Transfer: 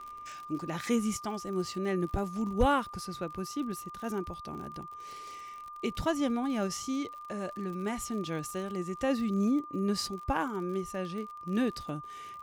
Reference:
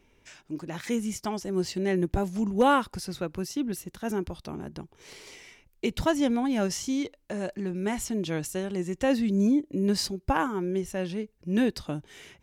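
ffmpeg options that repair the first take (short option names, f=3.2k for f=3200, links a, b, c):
-filter_complex "[0:a]adeclick=t=4,bandreject=f=1.2k:w=30,asplit=3[a][b][c];[a]afade=t=out:st=2.59:d=0.02[d];[b]highpass=f=140:w=0.5412,highpass=f=140:w=1.3066,afade=t=in:st=2.59:d=0.02,afade=t=out:st=2.71:d=0.02[e];[c]afade=t=in:st=2.71:d=0.02[f];[d][e][f]amix=inputs=3:normalize=0,asetnsamples=n=441:p=0,asendcmd='1.17 volume volume 5dB',volume=0dB"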